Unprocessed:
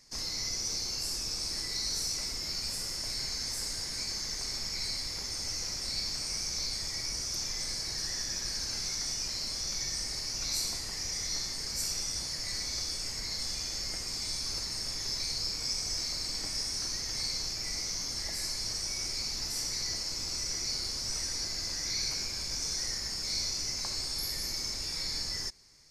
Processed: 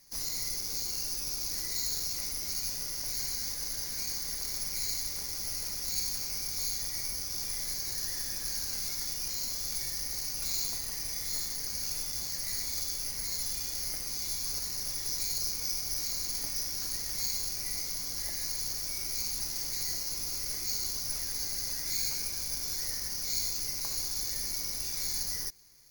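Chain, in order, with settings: careless resampling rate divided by 4×, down filtered, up zero stuff; trim -3 dB

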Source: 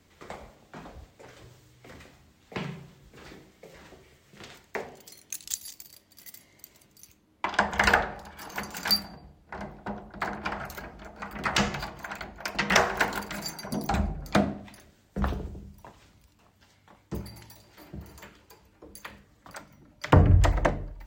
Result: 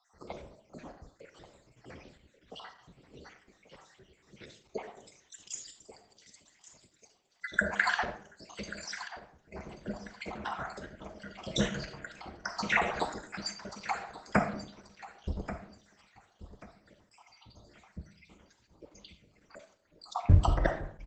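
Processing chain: random holes in the spectrogram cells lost 69%; hum notches 50/100/150 Hz; 12.38–14.59 s: LFO notch sine 7.9 Hz 280–2500 Hz; feedback delay 1135 ms, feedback 25%, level -14 dB; reverberation RT60 0.60 s, pre-delay 5 ms, DRR 7.5 dB; Opus 12 kbps 48 kHz

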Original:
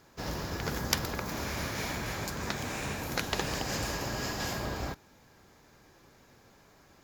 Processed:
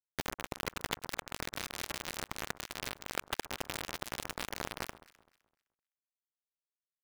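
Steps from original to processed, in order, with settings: steep low-pass 3.6 kHz 36 dB/octave; compression 4:1, threshold -43 dBFS, peak gain reduction 14 dB; word length cut 6-bit, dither none; on a send: echo whose repeats swap between lows and highs 128 ms, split 1.4 kHz, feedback 50%, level -14 dB; on the sum: trim +9 dB

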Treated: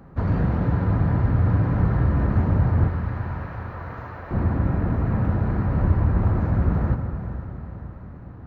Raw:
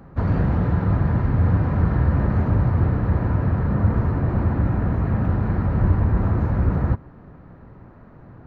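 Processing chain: 2.88–4.31 s: Bessel high-pass 930 Hz, order 2; echo that smears into a reverb 477 ms, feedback 53%, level -11 dB; on a send at -9 dB: reverberation RT60 1.8 s, pre-delay 68 ms; on the sum: trim -2 dB

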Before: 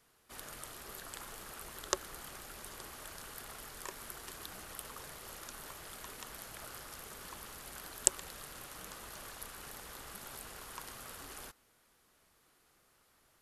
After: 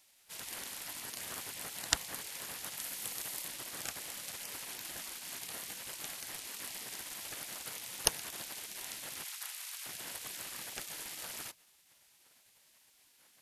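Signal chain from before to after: spectral gate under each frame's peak -10 dB weak; 2.77–3.48 s: treble shelf 10 kHz +7.5 dB; 9.24–9.86 s: Bessel high-pass 1.2 kHz, order 4; trim +8 dB

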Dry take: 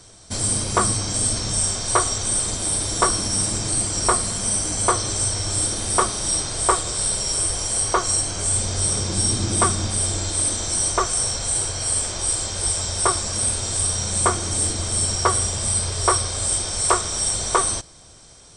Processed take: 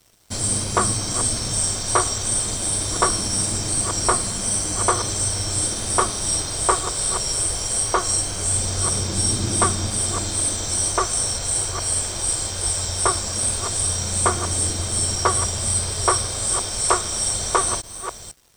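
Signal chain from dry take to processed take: chunks repeated in reverse 495 ms, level -10.5 dB; crossover distortion -45 dBFS

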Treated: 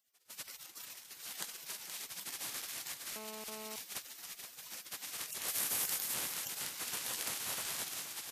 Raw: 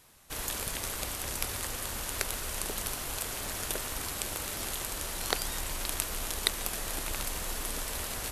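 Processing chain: spectral gate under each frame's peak -20 dB weak; 0.66–1.11 s: compressor with a negative ratio -51 dBFS, ratio -0.5; 5.48–6.14 s: treble shelf 8.9 kHz +10.5 dB; saturation -19 dBFS, distortion -29 dB; delay 473 ms -8.5 dB; 3.16–3.76 s: mobile phone buzz -48 dBFS

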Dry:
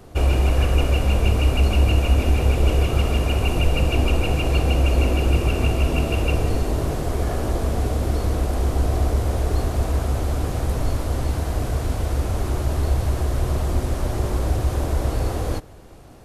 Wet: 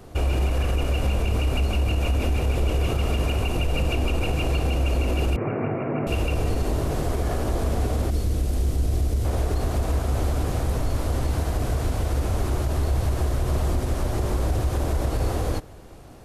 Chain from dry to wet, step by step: 5.36–6.07 s: Chebyshev band-pass 110–2200 Hz, order 5; 8.10–9.25 s: peaking EQ 1 kHz -11.5 dB 2.3 oct; peak limiter -15 dBFS, peak gain reduction 9 dB

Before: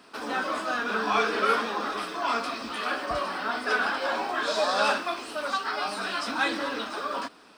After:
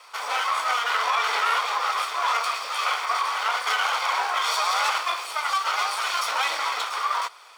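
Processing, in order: comb filter that takes the minimum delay 0.89 ms; elliptic high-pass 510 Hz, stop band 80 dB; peak limiter -22 dBFS, peak gain reduction 9 dB; trim +8 dB

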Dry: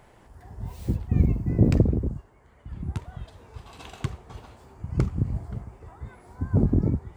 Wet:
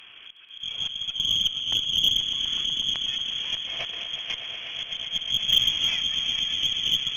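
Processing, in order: level rider gain up to 12.5 dB; frequency inversion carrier 3.3 kHz; compression 6:1, threshold -16 dBFS, peak gain reduction 11 dB; slow attack 466 ms; echo with a slow build-up 122 ms, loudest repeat 5, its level -11 dB; Chebyshev shaper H 5 -44 dB, 6 -23 dB, 8 -40 dB, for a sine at -15.5 dBFS; trim +5.5 dB

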